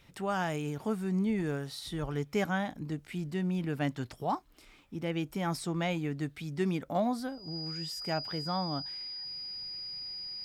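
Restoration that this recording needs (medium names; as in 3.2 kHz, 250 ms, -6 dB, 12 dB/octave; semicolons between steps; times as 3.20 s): band-stop 4.9 kHz, Q 30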